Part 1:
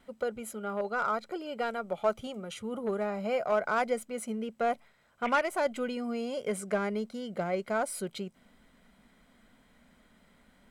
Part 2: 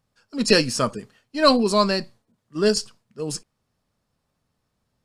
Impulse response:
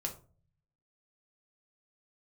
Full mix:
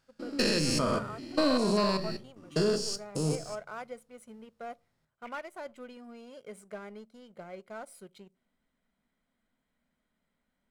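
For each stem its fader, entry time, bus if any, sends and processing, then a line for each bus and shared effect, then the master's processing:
−17.5 dB, 0.00 s, send −15.5 dB, no processing
−6.0 dB, 0.00 s, send −3 dB, spectrum averaged block by block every 200 ms; downward compressor, threshold −24 dBFS, peak gain reduction 7 dB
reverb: on, RT60 0.40 s, pre-delay 3 ms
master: leveller curve on the samples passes 1

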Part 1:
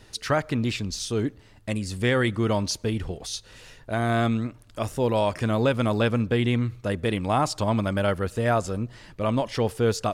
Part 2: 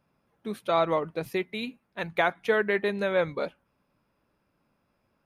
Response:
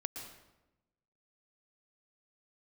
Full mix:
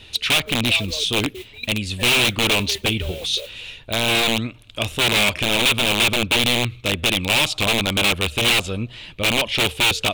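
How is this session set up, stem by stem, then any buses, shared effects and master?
+2.5 dB, 0.00 s, no send, parametric band 75 Hz +10.5 dB 0.22 octaves; wrap-around overflow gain 18 dB
−2.5 dB, 0.00 s, no send, spectral envelope exaggerated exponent 3; output level in coarse steps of 16 dB; noise that follows the level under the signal 11 dB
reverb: not used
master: flat-topped bell 3,000 Hz +14.5 dB 1 octave; hard clipping −12 dBFS, distortion −10 dB

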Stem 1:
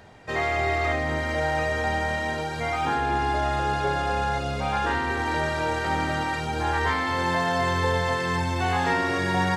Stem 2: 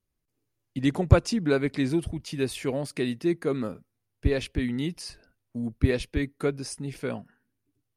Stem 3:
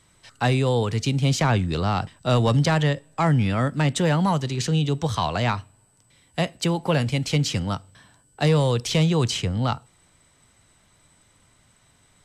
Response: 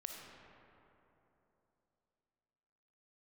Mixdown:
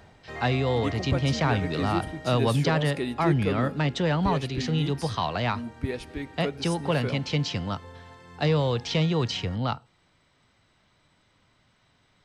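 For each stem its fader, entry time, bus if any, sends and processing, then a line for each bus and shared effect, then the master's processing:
0:01.89 −4.5 dB → 0:02.56 −15 dB, 0.00 s, send −15 dB, low-shelf EQ 130 Hz +11.5 dB; automatic ducking −12 dB, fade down 0.45 s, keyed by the third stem
−14.0 dB, 0.00 s, send −9.5 dB, automatic gain control gain up to 11.5 dB
−3.0 dB, 0.00 s, no send, low-pass filter 5,300 Hz 24 dB per octave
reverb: on, RT60 3.2 s, pre-delay 15 ms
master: low-shelf EQ 100 Hz −5.5 dB

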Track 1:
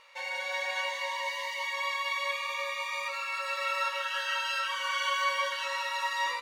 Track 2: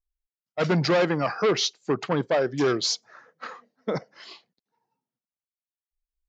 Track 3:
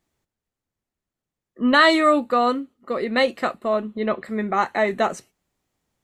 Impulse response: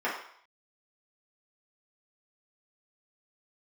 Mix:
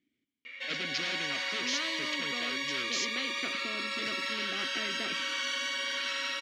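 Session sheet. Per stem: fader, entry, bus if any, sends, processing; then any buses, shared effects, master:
−2.0 dB, 0.45 s, send −5.5 dB, automatic gain control gain up to 6 dB
−10.0 dB, 0.10 s, no send, spectral tilt +4 dB per octave
−12.0 dB, 0.00 s, no send, no processing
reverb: on, RT60 0.60 s, pre-delay 3 ms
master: formant filter i; every bin compressed towards the loudest bin 4 to 1

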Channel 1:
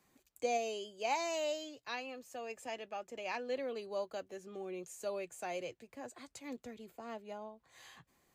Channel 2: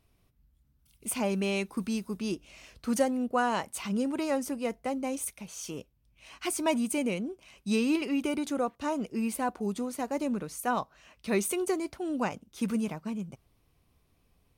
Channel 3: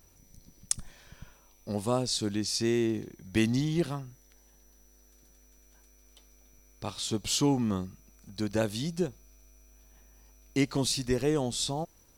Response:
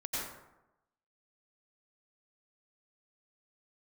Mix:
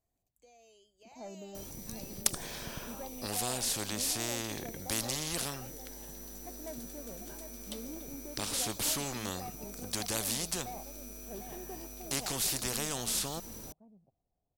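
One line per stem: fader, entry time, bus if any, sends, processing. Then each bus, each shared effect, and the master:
0:00.71 −19 dB → 0:01.44 −11 dB, 0.00 s, no send, no echo send, spectral tilt +2 dB per octave; brickwall limiter −31.5 dBFS, peak gain reduction 8.5 dB
−18.0 dB, 0.00 s, no send, echo send −7.5 dB, low-pass with resonance 730 Hz, resonance Q 5.3; soft clipping −19.5 dBFS, distortion −11 dB
+1.5 dB, 1.55 s, no send, no echo send, every bin compressed towards the loudest bin 4 to 1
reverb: not used
echo: single-tap delay 748 ms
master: parametric band 1,900 Hz −6 dB 2.6 octaves

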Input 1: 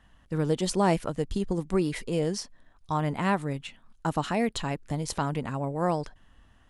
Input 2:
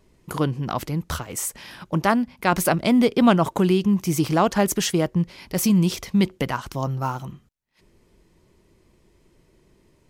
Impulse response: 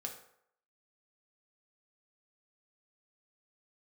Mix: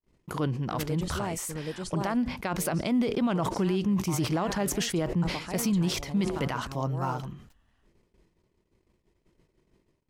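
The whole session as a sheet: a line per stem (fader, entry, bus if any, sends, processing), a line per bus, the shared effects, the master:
−0.5 dB, 0.40 s, muted 0:01.40–0:02.58, no send, echo send −9 dB, automatic ducking −15 dB, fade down 2.00 s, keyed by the second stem
−4.0 dB, 0.00 s, no send, no echo send, noise gate −56 dBFS, range −34 dB; high-shelf EQ 8,500 Hz −8.5 dB; level that may fall only so fast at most 95 dB per second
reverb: not used
echo: single-tap delay 773 ms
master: brickwall limiter −19.5 dBFS, peak gain reduction 11.5 dB

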